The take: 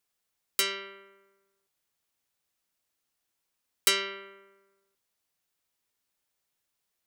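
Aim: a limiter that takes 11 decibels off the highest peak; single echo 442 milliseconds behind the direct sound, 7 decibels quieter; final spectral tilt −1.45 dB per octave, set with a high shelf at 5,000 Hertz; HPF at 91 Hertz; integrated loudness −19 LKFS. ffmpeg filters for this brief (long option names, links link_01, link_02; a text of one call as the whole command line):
ffmpeg -i in.wav -af "highpass=91,highshelf=frequency=5000:gain=-7,alimiter=limit=-23.5dB:level=0:latency=1,aecho=1:1:442:0.447,volume=18.5dB" out.wav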